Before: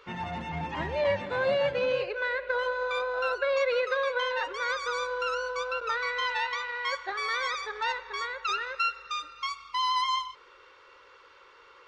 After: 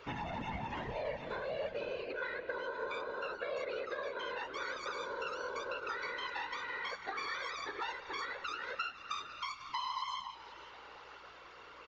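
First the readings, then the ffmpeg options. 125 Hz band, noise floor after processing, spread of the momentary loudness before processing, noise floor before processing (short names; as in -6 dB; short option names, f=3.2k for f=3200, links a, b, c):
n/a, -54 dBFS, 7 LU, -56 dBFS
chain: -filter_complex "[0:a]acompressor=threshold=-38dB:ratio=10,aresample=16000,aresample=44100,afftfilt=real='hypot(re,im)*cos(2*PI*random(0))':imag='hypot(re,im)*sin(2*PI*random(1))':win_size=512:overlap=0.75,aeval=exprs='val(0)+0.0001*(sin(2*PI*60*n/s)+sin(2*PI*2*60*n/s)/2+sin(2*PI*3*60*n/s)/3+sin(2*PI*4*60*n/s)/4+sin(2*PI*5*60*n/s)/5)':c=same,asplit=2[a][b];[b]asplit=4[c][d][e][f];[c]adelay=498,afreqshift=-100,volume=-16.5dB[g];[d]adelay=996,afreqshift=-200,volume=-22.5dB[h];[e]adelay=1494,afreqshift=-300,volume=-28.5dB[i];[f]adelay=1992,afreqshift=-400,volume=-34.6dB[j];[g][h][i][j]amix=inputs=4:normalize=0[k];[a][k]amix=inputs=2:normalize=0,volume=7dB"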